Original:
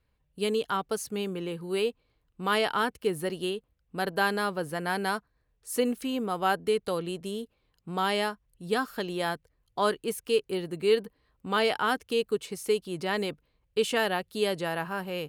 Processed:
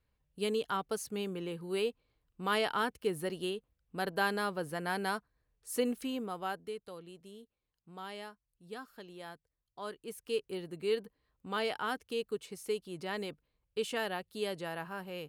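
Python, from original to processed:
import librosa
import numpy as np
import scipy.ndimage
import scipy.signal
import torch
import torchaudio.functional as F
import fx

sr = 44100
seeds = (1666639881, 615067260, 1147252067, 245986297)

y = fx.gain(x, sr, db=fx.line((6.05, -5.0), (6.86, -17.0), (9.8, -17.0), (10.34, -8.5)))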